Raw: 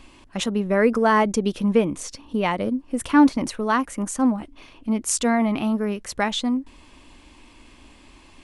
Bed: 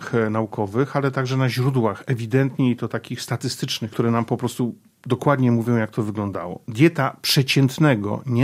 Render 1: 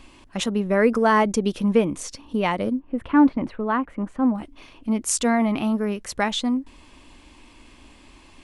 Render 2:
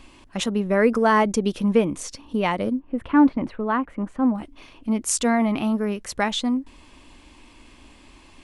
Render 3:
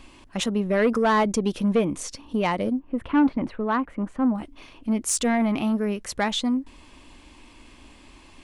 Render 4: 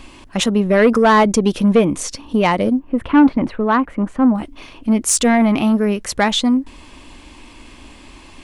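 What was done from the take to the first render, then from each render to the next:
0:02.79–0:04.35: high-frequency loss of the air 490 metres
no processing that can be heard
soft clipping −13.5 dBFS, distortion −15 dB
level +8.5 dB

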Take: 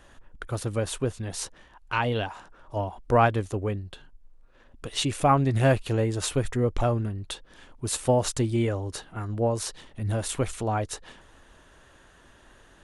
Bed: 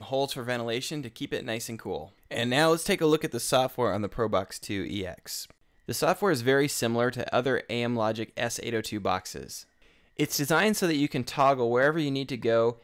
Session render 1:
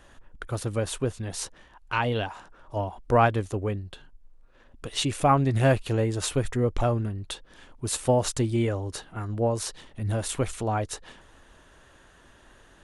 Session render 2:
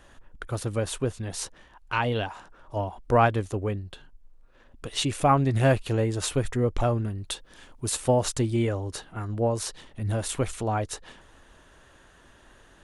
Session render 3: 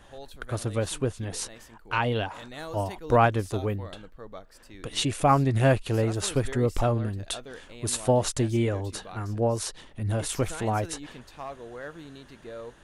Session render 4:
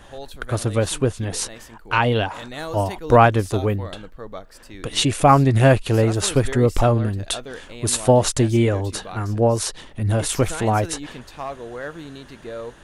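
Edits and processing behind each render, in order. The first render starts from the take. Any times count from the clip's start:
no processing that can be heard
0:07.08–0:07.90: high-shelf EQ 5,000 Hz +6.5 dB
mix in bed −16.5 dB
level +7.5 dB; brickwall limiter −2 dBFS, peak gain reduction 1.5 dB

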